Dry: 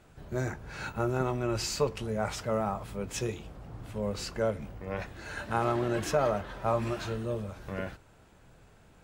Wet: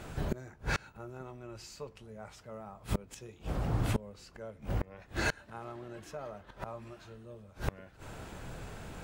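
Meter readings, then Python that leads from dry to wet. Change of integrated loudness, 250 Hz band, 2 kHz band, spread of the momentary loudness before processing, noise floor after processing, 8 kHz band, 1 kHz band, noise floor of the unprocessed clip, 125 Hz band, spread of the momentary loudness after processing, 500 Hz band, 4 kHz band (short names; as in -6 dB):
-7.0 dB, -7.0 dB, -1.5 dB, 11 LU, -58 dBFS, -8.5 dB, -9.5 dB, -58 dBFS, -3.0 dB, 15 LU, -11.5 dB, -6.0 dB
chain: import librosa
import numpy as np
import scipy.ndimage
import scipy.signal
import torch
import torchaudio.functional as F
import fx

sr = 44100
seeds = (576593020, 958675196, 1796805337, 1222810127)

y = fx.gate_flip(x, sr, shuts_db=-31.0, range_db=-29)
y = y * librosa.db_to_amplitude(13.0)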